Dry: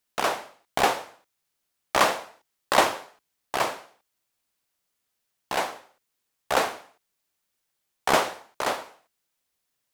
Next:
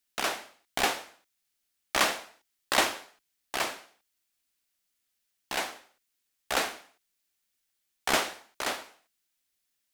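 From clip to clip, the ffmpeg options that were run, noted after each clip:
ffmpeg -i in.wav -af "equalizer=frequency=125:width_type=o:width=1:gain=-11,equalizer=frequency=500:width_type=o:width=1:gain=-7,equalizer=frequency=1000:width_type=o:width=1:gain=-7" out.wav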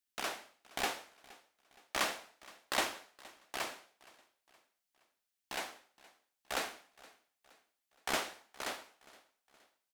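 ffmpeg -i in.wav -af "aecho=1:1:469|938|1407:0.0794|0.0365|0.0168,volume=-8.5dB" out.wav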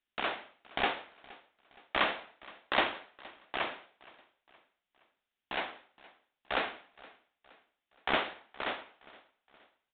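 ffmpeg -i in.wav -af "aresample=8000,aresample=44100,volume=5.5dB" out.wav

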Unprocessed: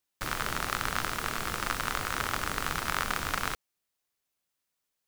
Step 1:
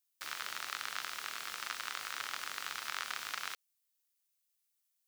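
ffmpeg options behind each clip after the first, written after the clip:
ffmpeg -i in.wav -filter_complex "[0:a]highshelf=frequency=4400:gain=-6,acrossover=split=5800[link_01][link_02];[link_02]acompressor=threshold=-57dB:ratio=4:attack=1:release=60[link_03];[link_01][link_03]amix=inputs=2:normalize=0,aderivative,volume=5dB" out.wav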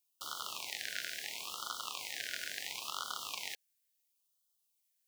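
ffmpeg -i in.wav -af "afftfilt=real='re*(1-between(b*sr/1024,980*pow(2100/980,0.5+0.5*sin(2*PI*0.73*pts/sr))/1.41,980*pow(2100/980,0.5+0.5*sin(2*PI*0.73*pts/sr))*1.41))':imag='im*(1-between(b*sr/1024,980*pow(2100/980,0.5+0.5*sin(2*PI*0.73*pts/sr))/1.41,980*pow(2100/980,0.5+0.5*sin(2*PI*0.73*pts/sr))*1.41))':win_size=1024:overlap=0.75,volume=1.5dB" out.wav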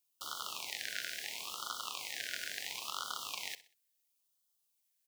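ffmpeg -i in.wav -af "aecho=1:1:63|126|189:0.15|0.0569|0.0216" out.wav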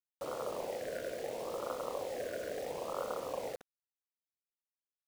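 ffmpeg -i in.wav -af "lowpass=frequency=530:width_type=q:width=5.6,acrusher=bits=9:mix=0:aa=0.000001,volume=11.5dB" out.wav

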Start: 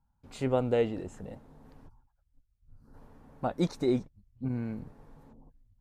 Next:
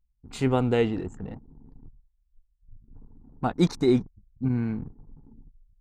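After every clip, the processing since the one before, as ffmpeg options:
ffmpeg -i in.wav -af "anlmdn=0.00631,equalizer=frequency=570:width=3.4:gain=-12.5,volume=7.5dB" out.wav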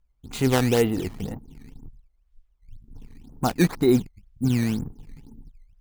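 ffmpeg -i in.wav -filter_complex "[0:a]asplit=2[link_01][link_02];[link_02]alimiter=limit=-20.5dB:level=0:latency=1:release=355,volume=-2dB[link_03];[link_01][link_03]amix=inputs=2:normalize=0,acrusher=samples=12:mix=1:aa=0.000001:lfo=1:lforange=19.2:lforate=2" out.wav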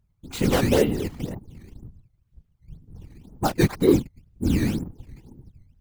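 ffmpeg -i in.wav -af "asoftclip=type=hard:threshold=-12.5dB,afftfilt=real='hypot(re,im)*cos(2*PI*random(0))':imag='hypot(re,im)*sin(2*PI*random(1))':win_size=512:overlap=0.75,volume=6.5dB" out.wav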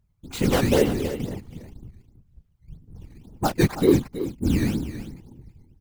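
ffmpeg -i in.wav -af "aecho=1:1:325:0.251" out.wav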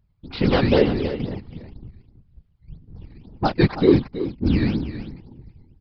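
ffmpeg -i in.wav -af "aresample=11025,aresample=44100,volume=2.5dB" out.wav

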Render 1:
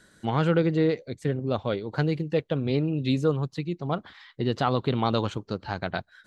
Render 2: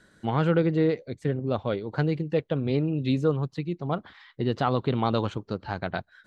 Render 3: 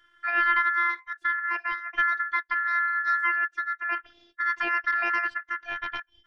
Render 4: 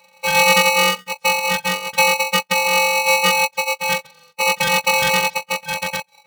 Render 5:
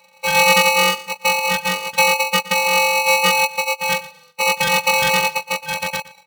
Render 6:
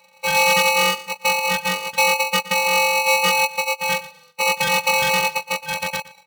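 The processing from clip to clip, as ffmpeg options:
ffmpeg -i in.wav -af "highshelf=frequency=4400:gain=-8.5" out.wav
ffmpeg -i in.wav -af "bass=frequency=250:gain=8,treble=frequency=4000:gain=-12,aeval=exprs='val(0)*sin(2*PI*1600*n/s)':channel_layout=same,afftfilt=real='hypot(re,im)*cos(PI*b)':imag='0':win_size=512:overlap=0.75" out.wav
ffmpeg -i in.wav -af "aeval=exprs='val(0)*sgn(sin(2*PI*850*n/s))':channel_layout=same,volume=9dB" out.wav
ffmpeg -i in.wav -af "aecho=1:1:117|234:0.126|0.0239" out.wav
ffmpeg -i in.wav -af "asoftclip=type=hard:threshold=-8.5dB,volume=-1.5dB" out.wav

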